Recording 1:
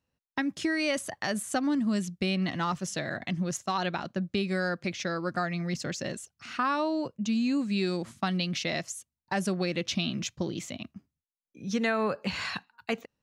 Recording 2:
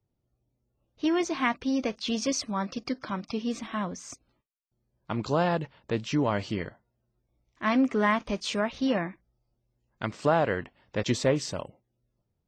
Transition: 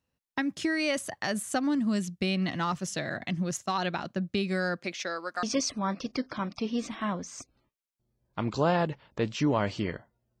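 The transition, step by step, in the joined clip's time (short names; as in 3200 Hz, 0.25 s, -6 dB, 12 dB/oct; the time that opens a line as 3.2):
recording 1
4.79–5.43 HPF 240 Hz -> 800 Hz
5.43 switch to recording 2 from 2.15 s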